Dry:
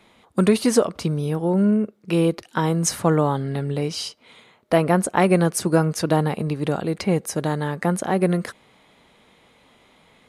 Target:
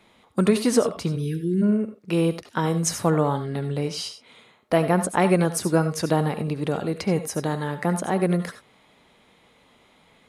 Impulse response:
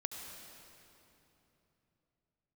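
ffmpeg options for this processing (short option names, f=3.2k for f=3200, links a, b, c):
-filter_complex "[0:a]asplit=3[a][b][c];[a]afade=t=out:st=1.15:d=0.02[d];[b]asuperstop=centerf=830:order=20:qfactor=0.74,afade=t=in:st=1.15:d=0.02,afade=t=out:st=1.61:d=0.02[e];[c]afade=t=in:st=1.61:d=0.02[f];[d][e][f]amix=inputs=3:normalize=0[g];[1:a]atrim=start_sample=2205,atrim=end_sample=4410[h];[g][h]afir=irnorm=-1:irlink=0"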